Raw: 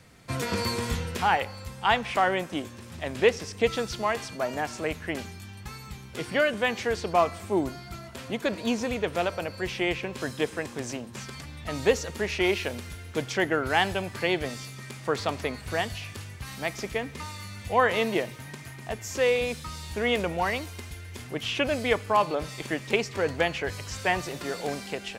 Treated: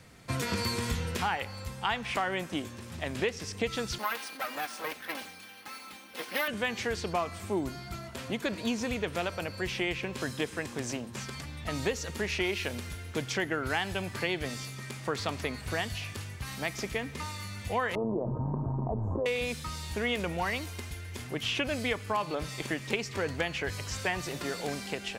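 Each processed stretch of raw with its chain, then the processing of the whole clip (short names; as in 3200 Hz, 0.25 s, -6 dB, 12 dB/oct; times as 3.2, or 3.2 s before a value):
3.98–6.48 minimum comb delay 3.8 ms + weighting filter A + careless resampling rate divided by 3×, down filtered, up hold
17.95–19.26 elliptic low-pass 1000 Hz, stop band 50 dB + AM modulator 110 Hz, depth 35% + fast leveller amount 70%
whole clip: dynamic EQ 600 Hz, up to -5 dB, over -36 dBFS, Q 0.78; compressor, threshold -26 dBFS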